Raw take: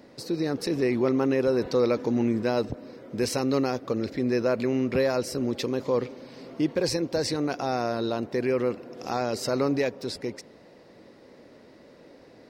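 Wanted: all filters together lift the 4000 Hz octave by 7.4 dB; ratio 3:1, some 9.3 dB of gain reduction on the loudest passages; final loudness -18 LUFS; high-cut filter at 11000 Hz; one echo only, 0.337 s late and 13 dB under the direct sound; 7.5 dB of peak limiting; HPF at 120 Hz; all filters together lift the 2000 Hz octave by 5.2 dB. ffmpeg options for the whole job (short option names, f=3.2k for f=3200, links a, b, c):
-af "highpass=120,lowpass=11k,equalizer=f=2k:t=o:g=4.5,equalizer=f=4k:t=o:g=8.5,acompressor=threshold=-32dB:ratio=3,alimiter=level_in=0.5dB:limit=-24dB:level=0:latency=1,volume=-0.5dB,aecho=1:1:337:0.224,volume=17.5dB"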